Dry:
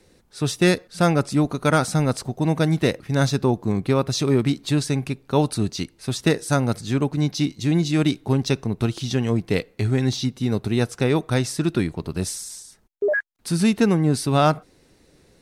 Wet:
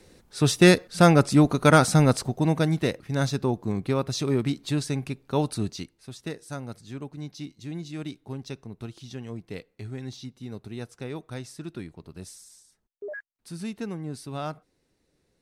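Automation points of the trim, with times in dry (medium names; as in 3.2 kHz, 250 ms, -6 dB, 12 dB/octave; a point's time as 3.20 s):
2.05 s +2 dB
2.88 s -5.5 dB
5.68 s -5.5 dB
6.10 s -15.5 dB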